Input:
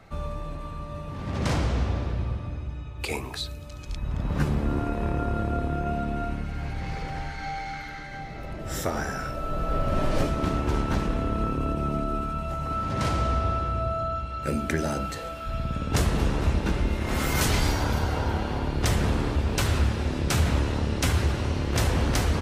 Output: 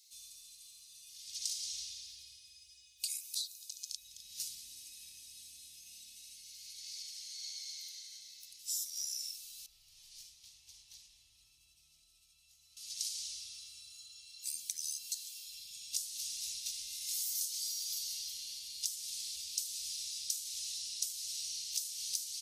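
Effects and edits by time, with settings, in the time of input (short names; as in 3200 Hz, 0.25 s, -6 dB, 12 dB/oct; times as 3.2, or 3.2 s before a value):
1.02–3.26 comb 2.8 ms
9.66–12.77 EQ curve 110 Hz 0 dB, 240 Hz -14 dB, 800 Hz +2 dB, 1800 Hz -9 dB, 8000 Hz -19 dB
whole clip: inverse Chebyshev high-pass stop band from 1500 Hz, stop band 60 dB; notch 7500 Hz, Q 21; compressor 10:1, threshold -45 dBFS; gain +10.5 dB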